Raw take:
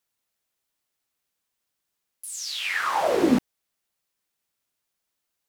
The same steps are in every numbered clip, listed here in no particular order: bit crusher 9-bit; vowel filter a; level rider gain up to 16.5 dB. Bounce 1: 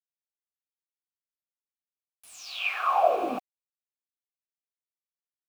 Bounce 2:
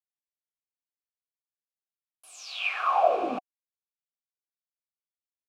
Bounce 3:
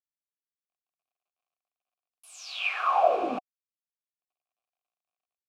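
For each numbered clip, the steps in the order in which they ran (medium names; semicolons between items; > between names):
level rider > vowel filter > bit crusher; bit crusher > level rider > vowel filter; level rider > bit crusher > vowel filter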